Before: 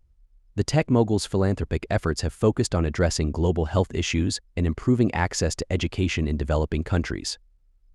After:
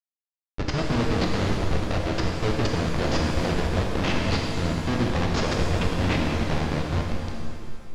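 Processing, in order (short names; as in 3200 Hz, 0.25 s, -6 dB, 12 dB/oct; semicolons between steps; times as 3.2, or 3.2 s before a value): ending faded out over 1.53 s; HPF 67 Hz 24 dB/oct; Schmitt trigger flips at -24.5 dBFS; LPF 5400 Hz 24 dB/oct; shimmer reverb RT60 2.1 s, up +7 st, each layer -8 dB, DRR -0.5 dB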